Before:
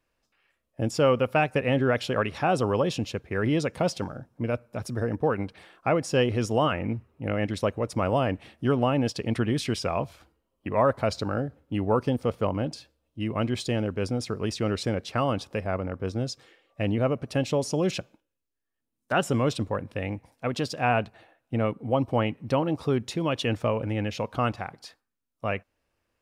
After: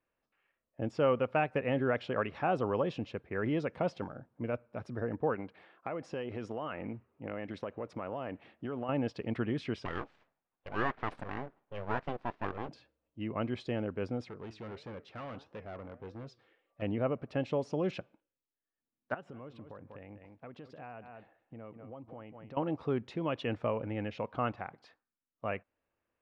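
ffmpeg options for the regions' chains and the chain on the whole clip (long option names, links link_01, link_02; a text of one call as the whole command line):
ffmpeg -i in.wav -filter_complex "[0:a]asettb=1/sr,asplit=3[link_01][link_02][link_03];[link_01]atrim=end=5.354[link_04];[link_02]atrim=start=5.35:end=8.89,asetpts=PTS-STARTPTS,afade=type=in:duration=0.004:curve=qsin,afade=type=out:start_time=3.536:duration=0.004:curve=qsin,lowshelf=frequency=86:gain=-11,acompressor=threshold=-26dB:ratio=10:attack=3.2:release=140:knee=1:detection=peak[link_05];[link_03]atrim=start=8.886[link_06];[link_04][link_05]acrossfade=duration=0.004:curve1=hsin:curve2=qsin[link_07];[link_07][link_06]acrossfade=duration=0.004:curve1=qsin:curve2=hsin,asettb=1/sr,asplit=3[link_08][link_09][link_10];[link_08]atrim=end=9.854[link_11];[link_09]atrim=start=9.85:end=12.69,asetpts=PTS-STARTPTS,afade=type=in:duration=0.004:curve=qsin,afade=type=out:start_time=2.836:duration=0.004:curve=qsin,highpass=170,lowpass=6200,aeval=exprs='abs(val(0))':channel_layout=same[link_12];[link_10]atrim=start=12.686[link_13];[link_11][link_12]acrossfade=duration=0.004:curve1=hsin:curve2=qsin[link_14];[link_14][link_13]acrossfade=duration=0.004:curve1=qsin:curve2=hsin,asettb=1/sr,asplit=3[link_15][link_16][link_17];[link_15]atrim=end=14.294[link_18];[link_16]atrim=start=14.29:end=16.82,asetpts=PTS-STARTPTS,afade=type=in:duration=0.004:curve=qsin,afade=type=out:start_time=2.526:duration=0.004:curve=qsin,flanger=delay=5.8:depth=3.8:regen=85:speed=1.6:shape=sinusoidal,asoftclip=type=hard:threshold=-33dB[link_19];[link_17]atrim=start=16.816[link_20];[link_18][link_19]acrossfade=duration=0.004:curve1=hsin:curve2=qsin[link_21];[link_21][link_20]acrossfade=duration=0.004:curve1=qsin:curve2=hsin,asettb=1/sr,asplit=3[link_22][link_23][link_24];[link_22]atrim=end=19.144[link_25];[link_23]atrim=start=19.14:end=22.57,asetpts=PTS-STARTPTS,afade=type=in:duration=0.004:curve=qsin,afade=type=out:start_time=3.426:duration=0.004:curve=qsin,aecho=1:1:193:0.158,atrim=end_sample=151263,acompressor=threshold=-38dB:ratio=5:attack=3.2:release=140:knee=1:detection=peak,highshelf=frequency=3500:gain=-7[link_26];[link_24]atrim=start=22.566[link_27];[link_25][link_26]acrossfade=duration=0.004:curve1=hsin:curve2=qsin[link_28];[link_28][link_27]acrossfade=duration=0.004:curve1=qsin:curve2=hsin,lowpass=2400,lowshelf=frequency=100:gain=-9.5,volume=-6dB" out.wav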